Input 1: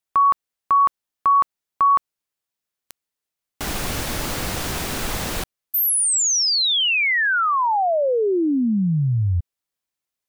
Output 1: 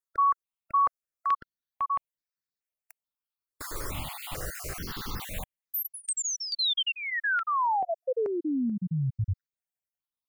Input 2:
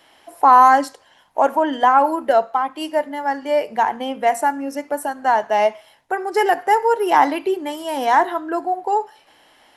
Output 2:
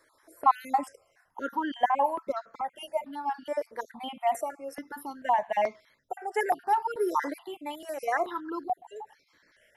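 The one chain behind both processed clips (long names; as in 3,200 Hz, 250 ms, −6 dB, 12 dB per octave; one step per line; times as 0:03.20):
time-frequency cells dropped at random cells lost 34%
step-sequenced phaser 2.3 Hz 760–2,900 Hz
level −6 dB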